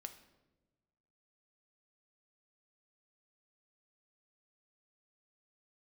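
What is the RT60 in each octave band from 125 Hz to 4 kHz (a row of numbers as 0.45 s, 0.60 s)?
1.7 s, 1.5 s, 1.4 s, 0.90 s, 0.80 s, 0.70 s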